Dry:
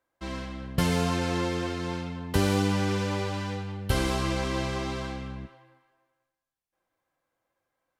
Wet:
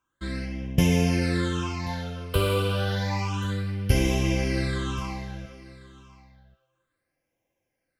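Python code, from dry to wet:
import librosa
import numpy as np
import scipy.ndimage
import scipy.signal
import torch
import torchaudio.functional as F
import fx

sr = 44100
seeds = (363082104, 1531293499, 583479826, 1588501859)

p1 = fx.phaser_stages(x, sr, stages=8, low_hz=240.0, high_hz=1300.0, hz=0.3, feedback_pct=25)
p2 = p1 + fx.echo_single(p1, sr, ms=1083, db=-20.0, dry=0)
y = p2 * librosa.db_to_amplitude(4.5)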